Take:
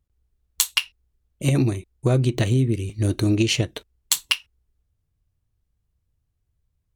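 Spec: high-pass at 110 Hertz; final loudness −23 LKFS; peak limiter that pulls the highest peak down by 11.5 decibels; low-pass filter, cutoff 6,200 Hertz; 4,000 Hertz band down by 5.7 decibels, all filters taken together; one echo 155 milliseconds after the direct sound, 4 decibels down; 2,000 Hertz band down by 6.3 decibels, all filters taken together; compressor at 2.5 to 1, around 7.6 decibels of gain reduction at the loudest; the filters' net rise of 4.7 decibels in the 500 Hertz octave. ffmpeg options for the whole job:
ffmpeg -i in.wav -af "highpass=110,lowpass=6200,equalizer=frequency=500:width_type=o:gain=7,equalizer=frequency=2000:width_type=o:gain=-7.5,equalizer=frequency=4000:width_type=o:gain=-4,acompressor=threshold=-26dB:ratio=2.5,alimiter=limit=-20dB:level=0:latency=1,aecho=1:1:155:0.631,volume=7.5dB" out.wav

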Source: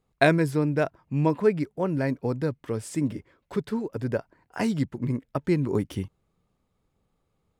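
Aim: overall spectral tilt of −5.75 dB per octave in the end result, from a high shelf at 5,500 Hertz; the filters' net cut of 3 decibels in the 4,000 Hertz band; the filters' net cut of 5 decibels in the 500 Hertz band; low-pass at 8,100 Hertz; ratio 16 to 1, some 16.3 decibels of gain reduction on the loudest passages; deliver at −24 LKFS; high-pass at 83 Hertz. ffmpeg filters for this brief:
ffmpeg -i in.wav -af "highpass=83,lowpass=8100,equalizer=frequency=500:width_type=o:gain=-6.5,equalizer=frequency=4000:width_type=o:gain=-5.5,highshelf=frequency=5500:gain=6,acompressor=threshold=-33dB:ratio=16,volume=15.5dB" out.wav

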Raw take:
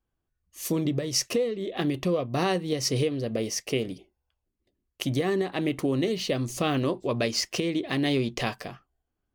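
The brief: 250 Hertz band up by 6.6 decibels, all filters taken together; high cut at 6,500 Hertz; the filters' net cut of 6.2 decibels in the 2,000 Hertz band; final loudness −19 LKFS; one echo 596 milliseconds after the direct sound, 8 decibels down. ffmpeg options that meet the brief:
ffmpeg -i in.wav -af "lowpass=6500,equalizer=frequency=250:width_type=o:gain=8.5,equalizer=frequency=2000:width_type=o:gain=-8,aecho=1:1:596:0.398,volume=5dB" out.wav

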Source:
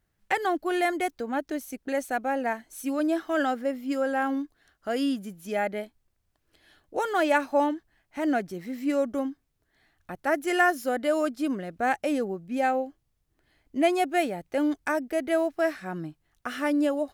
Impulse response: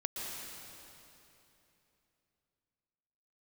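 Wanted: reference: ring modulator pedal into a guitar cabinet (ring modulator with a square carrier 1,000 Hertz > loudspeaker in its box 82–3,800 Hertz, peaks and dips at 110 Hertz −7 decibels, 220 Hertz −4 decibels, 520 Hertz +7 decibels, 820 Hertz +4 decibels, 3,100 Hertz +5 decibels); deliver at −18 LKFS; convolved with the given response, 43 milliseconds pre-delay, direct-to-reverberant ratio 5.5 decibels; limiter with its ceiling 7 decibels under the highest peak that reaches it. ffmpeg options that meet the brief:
-filter_complex "[0:a]alimiter=limit=-17.5dB:level=0:latency=1,asplit=2[link_01][link_02];[1:a]atrim=start_sample=2205,adelay=43[link_03];[link_02][link_03]afir=irnorm=-1:irlink=0,volume=-8dB[link_04];[link_01][link_04]amix=inputs=2:normalize=0,aeval=exprs='val(0)*sgn(sin(2*PI*1000*n/s))':channel_layout=same,highpass=82,equalizer=frequency=110:width_type=q:width=4:gain=-7,equalizer=frequency=220:width_type=q:width=4:gain=-4,equalizer=frequency=520:width_type=q:width=4:gain=7,equalizer=frequency=820:width_type=q:width=4:gain=4,equalizer=frequency=3100:width_type=q:width=4:gain=5,lowpass=frequency=3800:width=0.5412,lowpass=frequency=3800:width=1.3066,volume=8dB"

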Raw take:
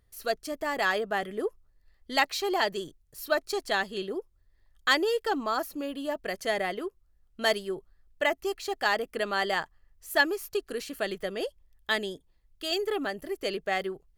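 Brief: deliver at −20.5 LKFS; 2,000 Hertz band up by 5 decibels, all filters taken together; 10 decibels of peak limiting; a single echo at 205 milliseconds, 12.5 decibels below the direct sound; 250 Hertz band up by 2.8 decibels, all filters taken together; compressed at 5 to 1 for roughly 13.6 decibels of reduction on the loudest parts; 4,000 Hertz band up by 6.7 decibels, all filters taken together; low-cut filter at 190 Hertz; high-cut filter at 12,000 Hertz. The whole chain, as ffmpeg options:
ffmpeg -i in.wav -af "highpass=190,lowpass=12000,equalizer=frequency=250:width_type=o:gain=5,equalizer=frequency=2000:width_type=o:gain=4.5,equalizer=frequency=4000:width_type=o:gain=7,acompressor=threshold=-29dB:ratio=5,alimiter=limit=-23.5dB:level=0:latency=1,aecho=1:1:205:0.237,volume=14.5dB" out.wav

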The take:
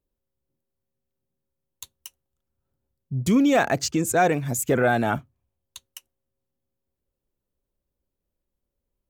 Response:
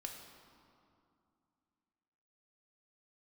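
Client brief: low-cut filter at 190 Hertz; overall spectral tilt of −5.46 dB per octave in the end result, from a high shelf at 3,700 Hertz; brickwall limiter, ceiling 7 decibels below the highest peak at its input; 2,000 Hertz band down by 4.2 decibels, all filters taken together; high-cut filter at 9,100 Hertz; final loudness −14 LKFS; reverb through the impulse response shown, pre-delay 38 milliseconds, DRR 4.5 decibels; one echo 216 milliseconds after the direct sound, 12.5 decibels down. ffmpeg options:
-filter_complex "[0:a]highpass=190,lowpass=9100,equalizer=frequency=2000:width_type=o:gain=-4,highshelf=frequency=3700:gain=-8.5,alimiter=limit=-17dB:level=0:latency=1,aecho=1:1:216:0.237,asplit=2[link_01][link_02];[1:a]atrim=start_sample=2205,adelay=38[link_03];[link_02][link_03]afir=irnorm=-1:irlink=0,volume=-2dB[link_04];[link_01][link_04]amix=inputs=2:normalize=0,volume=11.5dB"

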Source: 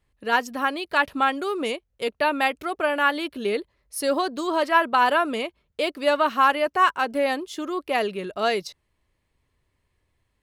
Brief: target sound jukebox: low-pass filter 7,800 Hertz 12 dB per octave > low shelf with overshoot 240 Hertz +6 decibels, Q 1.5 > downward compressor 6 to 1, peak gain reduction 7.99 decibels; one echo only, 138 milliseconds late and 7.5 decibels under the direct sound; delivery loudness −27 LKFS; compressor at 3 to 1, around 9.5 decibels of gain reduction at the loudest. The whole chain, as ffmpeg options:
ffmpeg -i in.wav -af "acompressor=threshold=-27dB:ratio=3,lowpass=7800,lowshelf=frequency=240:width_type=q:width=1.5:gain=6,aecho=1:1:138:0.422,acompressor=threshold=-30dB:ratio=6,volume=7.5dB" out.wav

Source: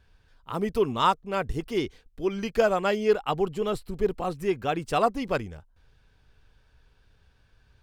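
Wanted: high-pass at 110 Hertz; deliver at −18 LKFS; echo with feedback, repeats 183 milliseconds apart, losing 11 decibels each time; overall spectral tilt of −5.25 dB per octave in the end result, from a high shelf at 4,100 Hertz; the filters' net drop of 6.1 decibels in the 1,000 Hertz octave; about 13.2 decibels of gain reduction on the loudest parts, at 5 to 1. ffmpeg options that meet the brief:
ffmpeg -i in.wav -af "highpass=110,equalizer=frequency=1000:width_type=o:gain=-8,highshelf=frequency=4100:gain=-8.5,acompressor=threshold=-33dB:ratio=5,aecho=1:1:183|366|549:0.282|0.0789|0.0221,volume=19.5dB" out.wav

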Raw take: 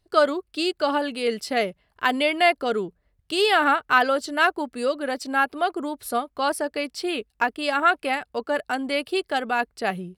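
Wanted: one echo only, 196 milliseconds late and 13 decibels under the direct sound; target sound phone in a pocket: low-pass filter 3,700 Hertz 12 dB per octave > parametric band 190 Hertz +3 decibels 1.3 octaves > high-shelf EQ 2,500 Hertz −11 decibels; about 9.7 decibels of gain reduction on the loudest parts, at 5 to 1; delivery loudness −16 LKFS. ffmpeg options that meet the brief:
ffmpeg -i in.wav -af "acompressor=threshold=-24dB:ratio=5,lowpass=3700,equalizer=frequency=190:width_type=o:width=1.3:gain=3,highshelf=frequency=2500:gain=-11,aecho=1:1:196:0.224,volume=14dB" out.wav

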